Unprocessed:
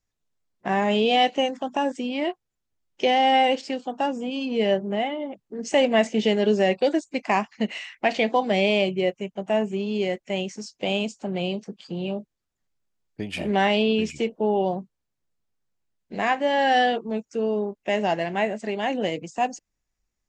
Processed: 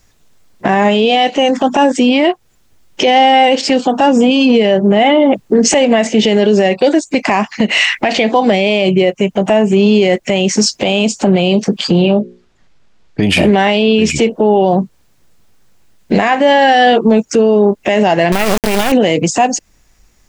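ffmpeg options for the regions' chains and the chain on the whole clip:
-filter_complex "[0:a]asettb=1/sr,asplit=3[a][b][c];[a]atrim=end=12.024[d];[b]atrim=start=12.02:end=13.23,asetpts=PTS-STARTPTS,afade=t=in:d=0.004:c=qsin,afade=t=out:st=1.206:d=0.004:c=qsin,lowpass=4.6k,bandreject=f=60:t=h:w=6,bandreject=f=120:t=h:w=6,bandreject=f=180:t=h:w=6,bandreject=f=240:t=h:w=6,bandreject=f=300:t=h:w=6,bandreject=f=360:t=h:w=6,bandreject=f=420:t=h:w=6,bandreject=f=480:t=h:w=6,bandreject=f=540:t=h:w=6[e];[c]atrim=start=13.226[f];[d][e]acrossfade=d=0.004:c1=hsin:c2=qsin[g];[g][f]acrossfade=d=0.004:c1=qsin:c2=hsin,asettb=1/sr,asplit=3[h][i][j];[h]atrim=end=18.324[k];[i]atrim=start=18.32:end=18.92,asetpts=PTS-STARTPTS,afade=t=in:d=0.004:c=qsin,afade=t=out:st=0.596:d=0.004:c=qsin,acompressor=threshold=-27dB:ratio=2:attack=3.2:release=140:knee=1:detection=peak,acrusher=bits=3:dc=4:mix=0:aa=0.000001[l];[j]atrim=start=18.916[m];[k][l]acrossfade=d=0.004:c1=hsin:c2=qsin[n];[n][m]acrossfade=d=0.004:c1=qsin:c2=hsin,acompressor=threshold=-31dB:ratio=6,alimiter=level_in=29.5dB:limit=-1dB:release=50:level=0:latency=1,volume=-1dB"

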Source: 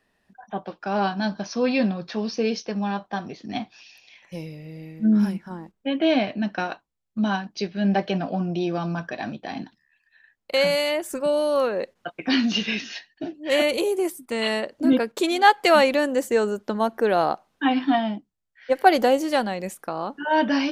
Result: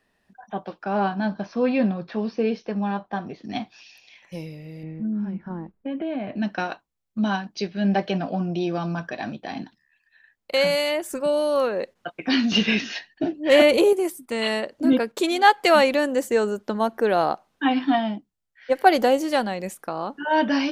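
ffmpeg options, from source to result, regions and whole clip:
-filter_complex "[0:a]asettb=1/sr,asplit=3[a][b][c];[a]atrim=end=0.834[d];[b]atrim=start=0.83:end=3.44,asetpts=PTS-STARTPTS,afade=t=in:d=0.004:c=qsin,afade=t=out:st=2.606:d=0.004:c=qsin,aemphasis=mode=reproduction:type=75fm,acrossover=split=4000[e][f];[f]acompressor=threshold=-55dB:ratio=4:attack=1:release=60[g];[e][g]amix=inputs=2:normalize=0[h];[c]atrim=start=3.436[i];[d][h]acrossfade=d=0.004:c1=hsin:c2=qsin[j];[j][i]acrossfade=d=0.004:c1=qsin:c2=hsin,asettb=1/sr,asplit=3[k][l][m];[k]atrim=end=4.834[n];[l]atrim=start=4.83:end=6.36,asetpts=PTS-STARTPTS,afade=t=in:d=0.004:c=qsin,afade=t=out:st=1.526:d=0.004:c=qsin,lowpass=2.1k,lowshelf=f=410:g=6,acompressor=threshold=-27dB:ratio=4:attack=3.2:release=140:knee=1:detection=peak[o];[m]atrim=start=6.356[p];[n][o]acrossfade=d=0.004:c1=hsin:c2=qsin[q];[q][p]acrossfade=d=0.004:c1=qsin:c2=hsin,asettb=1/sr,asplit=3[r][s][t];[r]atrim=end=12.524[u];[s]atrim=start=12.52:end=13.93,asetpts=PTS-STARTPTS,afade=t=in:d=0.004:c=qsin,afade=t=out:st=1.406:d=0.004:c=qsin,highshelf=f=2.8k:g=-7,acontrast=81[v];[t]atrim=start=13.926[w];[u][v]acrossfade=d=0.004:c1=hsin:c2=qsin[x];[x][w]acrossfade=d=0.004:c1=qsin:c2=hsin"

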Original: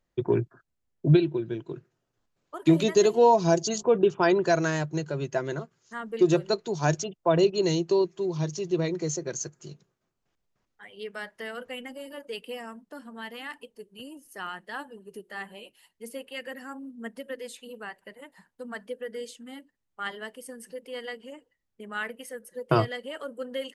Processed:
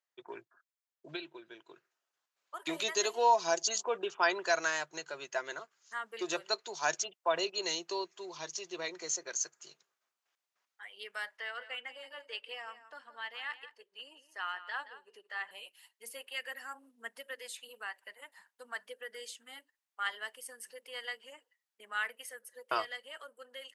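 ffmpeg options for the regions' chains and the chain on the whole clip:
-filter_complex "[0:a]asettb=1/sr,asplit=3[a][b][c];[a]atrim=end=11.374[d];[b]atrim=start=11.37:end=15.51,asetpts=PTS-STARTPTS,afade=t=in:d=0.004:c=qsin,afade=t=out:st=4.136:d=0.004:c=qsin,highpass=300,lowpass=4.5k,aecho=1:1:173:0.211,atrim=end_sample=182574[e];[c]atrim=start=15.506[f];[d][e]acrossfade=d=0.004:c1=hsin:c2=qsin[g];[g][f]acrossfade=d=0.004:c1=qsin:c2=hsin,highpass=980,dynaudnorm=f=510:g=7:m=7dB,volume=-7dB"

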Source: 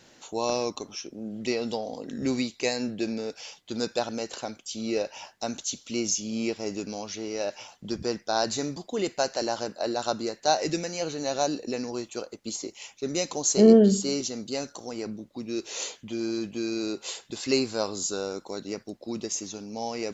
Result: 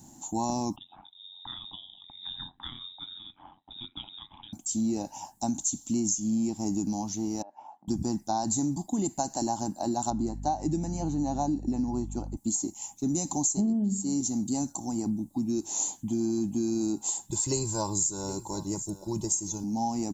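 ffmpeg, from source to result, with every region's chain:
-filter_complex "[0:a]asettb=1/sr,asplit=3[a][b][c];[a]atrim=end=0.764[d];[b]atrim=start=0.76:end=4.53,asetpts=PTS-STARTPTS,afade=t=in:d=0.004:c=qsin,afade=t=out:st=3.766:d=0.004:c=qsin,lowpass=f=3.3k:t=q:w=0.5098,lowpass=f=3.3k:t=q:w=0.6013,lowpass=f=3.3k:t=q:w=0.9,lowpass=f=3.3k:t=q:w=2.563,afreqshift=-3900,aeval=exprs='val(0)*sin(2*PI*45*n/s)':c=same[e];[c]atrim=start=4.526[f];[d][e]acrossfade=d=0.004:c1=hsin:c2=qsin[g];[g][f]acrossfade=d=0.004:c1=qsin:c2=hsin,asettb=1/sr,asplit=3[h][i][j];[h]atrim=end=7.424[k];[i]atrim=start=7.42:end=7.88,asetpts=PTS-STARTPTS,afade=t=in:d=0.004:c=qsin,afade=t=out:st=0.456:d=0.004:c=qsin,tiltshelf=f=1.1k:g=9.5,acompressor=threshold=-42dB:ratio=3:attack=3.2:release=140:knee=1:detection=peak,asuperpass=centerf=1300:order=4:qfactor=0.67[l];[j]atrim=start=7.876[m];[k][l]acrossfade=d=0.004:c1=hsin:c2=qsin[n];[n][m]acrossfade=d=0.004:c1=qsin:c2=hsin,asettb=1/sr,asplit=3[o][p][q];[o]atrim=end=10.104[r];[p]atrim=start=10.1:end=12.37,asetpts=PTS-STARTPTS,afade=t=in:d=0.004:c=qsin,afade=t=out:st=2.266:d=0.004:c=qsin,aemphasis=mode=reproduction:type=75kf,aeval=exprs='val(0)+0.00562*(sin(2*PI*50*n/s)+sin(2*PI*2*50*n/s)/2+sin(2*PI*3*50*n/s)/3+sin(2*PI*4*50*n/s)/4+sin(2*PI*5*50*n/s)/5)':c=same[s];[q]atrim=start=12.366[t];[r][s]acrossfade=d=0.004:c1=hsin:c2=qsin[u];[u][t]acrossfade=d=0.004:c1=qsin:c2=hsin,asettb=1/sr,asplit=3[v][w][x];[v]atrim=end=17.294[y];[w]atrim=start=17.29:end=19.64,asetpts=PTS-STARTPTS,afade=t=in:d=0.004:c=qsin,afade=t=out:st=2.346:d=0.004:c=qsin,aecho=1:1:2:0.96,atrim=end_sample=103635,aecho=1:1:765:0.119,atrim=end_sample=103635[z];[x]atrim=start=19.636[aa];[y][z]acrossfade=d=0.004:c1=hsin:c2=qsin[ab];[ab][aa]acrossfade=d=0.004:c1=qsin:c2=hsin,firequalizer=gain_entry='entry(300,0);entry(460,-26);entry(820,-1);entry(1300,-22);entry(2400,-26);entry(3600,-19);entry(5100,-15);entry(7600,6)':delay=0.05:min_phase=1,acompressor=threshold=-33dB:ratio=16,volume=9dB"

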